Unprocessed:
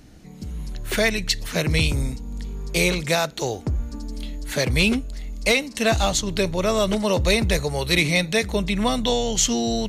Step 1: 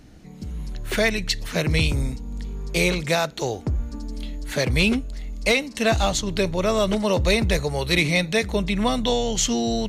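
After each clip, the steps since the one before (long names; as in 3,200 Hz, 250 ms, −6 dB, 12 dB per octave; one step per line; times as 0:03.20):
high-shelf EQ 5,600 Hz −5 dB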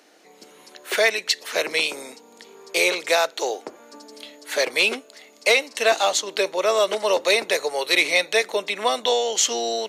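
high-pass filter 410 Hz 24 dB per octave
level +3 dB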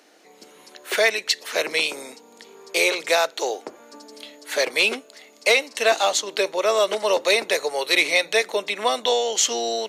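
mains-hum notches 60/120/180 Hz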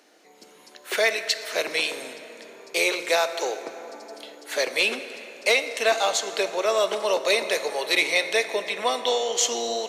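dense smooth reverb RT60 4 s, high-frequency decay 0.5×, DRR 9 dB
level −3 dB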